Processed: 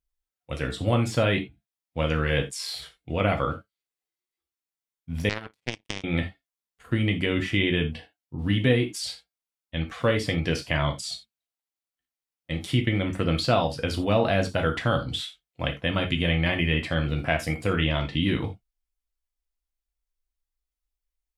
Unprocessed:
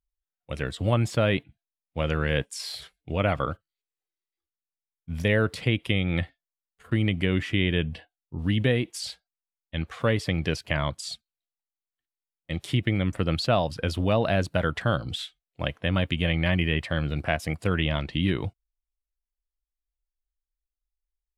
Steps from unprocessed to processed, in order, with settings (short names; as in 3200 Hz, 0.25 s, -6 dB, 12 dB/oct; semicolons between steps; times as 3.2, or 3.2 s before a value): non-linear reverb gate 0.11 s falling, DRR 3 dB; 5.29–6.04 power-law curve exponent 3